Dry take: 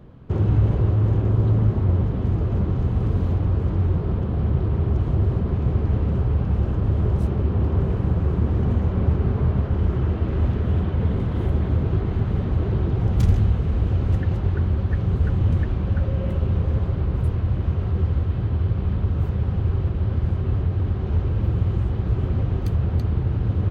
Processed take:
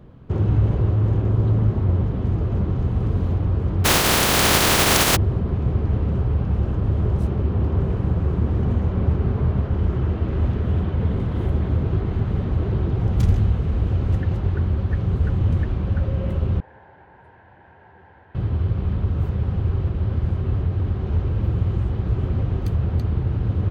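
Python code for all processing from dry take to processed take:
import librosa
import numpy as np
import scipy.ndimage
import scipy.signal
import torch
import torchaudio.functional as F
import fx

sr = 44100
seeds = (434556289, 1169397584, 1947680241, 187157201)

y = fx.spec_flatten(x, sr, power=0.21, at=(3.84, 5.15), fade=0.02)
y = fx.env_flatten(y, sr, amount_pct=50, at=(3.84, 5.15), fade=0.02)
y = fx.chain(y, sr, fx.double_bandpass(hz=1200.0, octaves=0.87),
    fx.doubler(ms=36.0, db=-13.5), at=(16.6, 18.35))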